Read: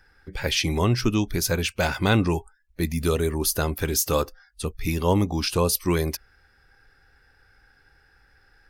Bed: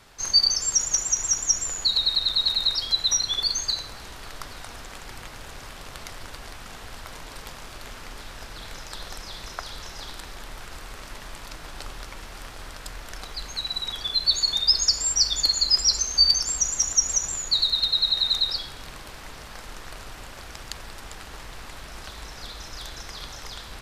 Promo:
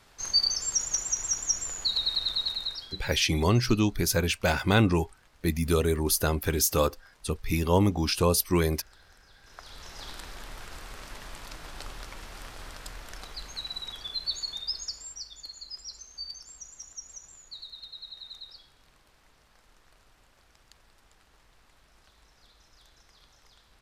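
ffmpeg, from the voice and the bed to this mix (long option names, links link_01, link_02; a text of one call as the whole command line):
ffmpeg -i stem1.wav -i stem2.wav -filter_complex "[0:a]adelay=2650,volume=-1.5dB[link_01];[1:a]volume=13dB,afade=type=out:start_time=2.28:duration=0.78:silence=0.149624,afade=type=in:start_time=9.42:duration=0.68:silence=0.11885,afade=type=out:start_time=12.69:duration=2.58:silence=0.125893[link_02];[link_01][link_02]amix=inputs=2:normalize=0" out.wav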